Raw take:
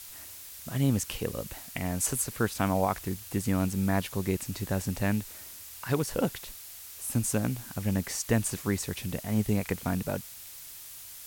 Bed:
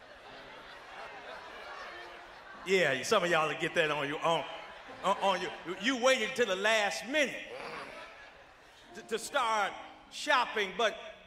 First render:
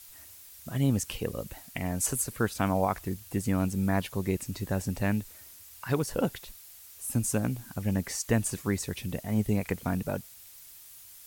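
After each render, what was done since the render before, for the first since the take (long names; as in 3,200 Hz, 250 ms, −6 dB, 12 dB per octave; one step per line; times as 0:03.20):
broadband denoise 7 dB, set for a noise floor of −46 dBFS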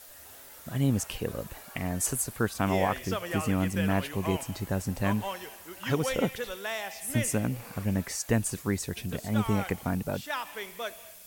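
mix in bed −6.5 dB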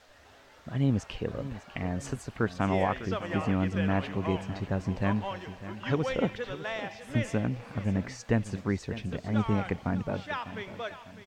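high-frequency loss of the air 170 metres
repeating echo 601 ms, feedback 40%, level −14 dB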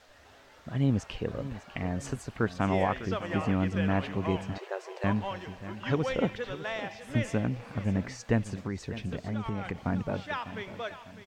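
0:04.58–0:05.04: linear-phase brick-wall high-pass 340 Hz
0:08.41–0:09.82: downward compressor, threshold −28 dBFS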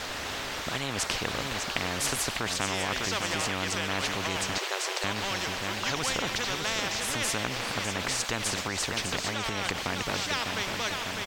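in parallel at −2 dB: compressor whose output falls as the input rises −30 dBFS
on the sum: every bin compressed towards the loudest bin 4 to 1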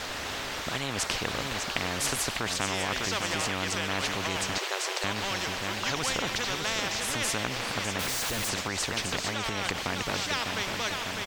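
0:07.99–0:08.49: sign of each sample alone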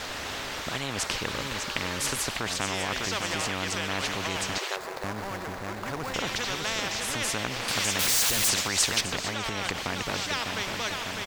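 0:01.11–0:02.24: Butterworth band-reject 710 Hz, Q 6.6
0:04.76–0:06.14: running median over 15 samples
0:07.68–0:09.01: high-shelf EQ 2,800 Hz +10 dB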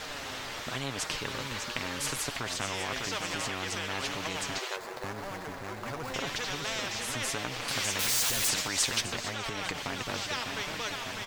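flanger 0.93 Hz, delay 6.3 ms, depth 2.5 ms, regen +42%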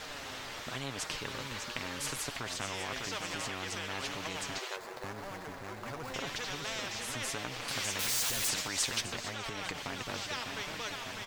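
level −4 dB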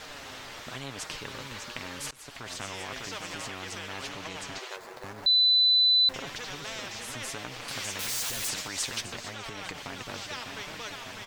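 0:02.11–0:02.53: fade in, from −22.5 dB
0:04.09–0:04.71: high-shelf EQ 11,000 Hz −6.5 dB
0:05.26–0:06.09: beep over 4,000 Hz −18 dBFS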